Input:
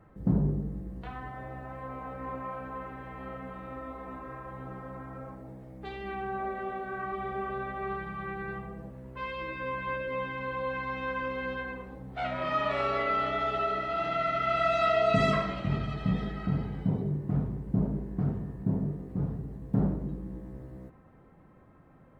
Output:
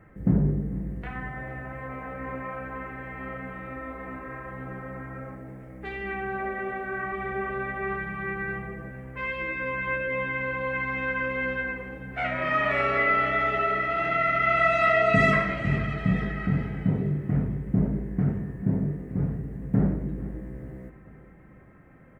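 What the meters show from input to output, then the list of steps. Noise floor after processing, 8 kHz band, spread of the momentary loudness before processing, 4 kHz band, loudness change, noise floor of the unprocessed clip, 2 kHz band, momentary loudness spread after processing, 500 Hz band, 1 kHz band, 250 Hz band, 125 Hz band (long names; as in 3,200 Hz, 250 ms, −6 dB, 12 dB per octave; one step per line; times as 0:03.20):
−50 dBFS, can't be measured, 15 LU, 0.0 dB, +5.0 dB, −56 dBFS, +10.0 dB, 16 LU, +2.5 dB, +3.0 dB, +4.0 dB, +4.0 dB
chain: octave-band graphic EQ 1,000/2,000/4,000 Hz −6/+11/−10 dB
on a send: repeating echo 444 ms, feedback 44%, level −16 dB
on the sum: level +4 dB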